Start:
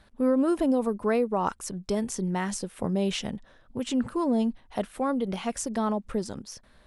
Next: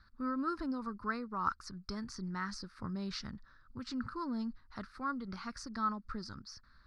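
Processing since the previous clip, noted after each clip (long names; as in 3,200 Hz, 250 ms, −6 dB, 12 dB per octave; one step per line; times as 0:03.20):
drawn EQ curve 100 Hz 0 dB, 170 Hz −7 dB, 310 Hz −9 dB, 460 Hz −18 dB, 720 Hz −19 dB, 1,300 Hz +7 dB, 3,100 Hz −18 dB, 4,600 Hz +6 dB, 7,200 Hz −18 dB, 12,000 Hz −25 dB
level −4 dB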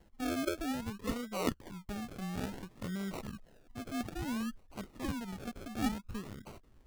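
sample-and-hold swept by an LFO 36×, swing 60% 0.58 Hz
level +1 dB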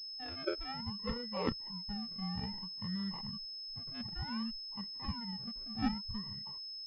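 noise reduction from a noise print of the clip's start 17 dB
switching amplifier with a slow clock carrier 5,200 Hz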